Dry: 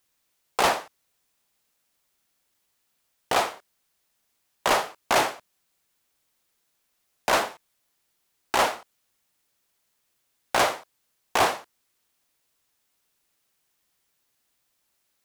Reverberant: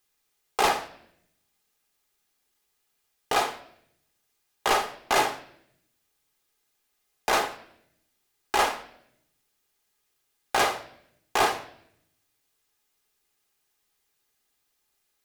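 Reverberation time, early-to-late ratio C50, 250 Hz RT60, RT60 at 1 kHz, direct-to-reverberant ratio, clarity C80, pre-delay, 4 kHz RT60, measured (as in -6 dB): 0.75 s, 14.5 dB, 1.1 s, 0.65 s, 7.5 dB, 17.5 dB, 3 ms, 0.70 s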